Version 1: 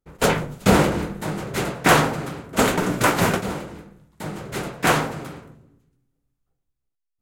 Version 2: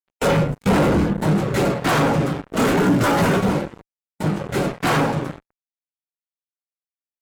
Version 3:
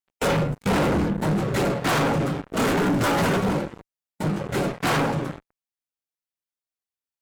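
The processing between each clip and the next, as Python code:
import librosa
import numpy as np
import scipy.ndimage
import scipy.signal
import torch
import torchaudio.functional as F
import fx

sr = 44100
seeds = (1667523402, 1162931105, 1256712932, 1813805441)

y1 = fx.comb_fb(x, sr, f0_hz=280.0, decay_s=0.51, harmonics='all', damping=0.0, mix_pct=60)
y1 = fx.fuzz(y1, sr, gain_db=41.0, gate_db=-42.0)
y1 = fx.spectral_expand(y1, sr, expansion=1.5)
y2 = 10.0 ** (-18.5 / 20.0) * np.tanh(y1 / 10.0 ** (-18.5 / 20.0))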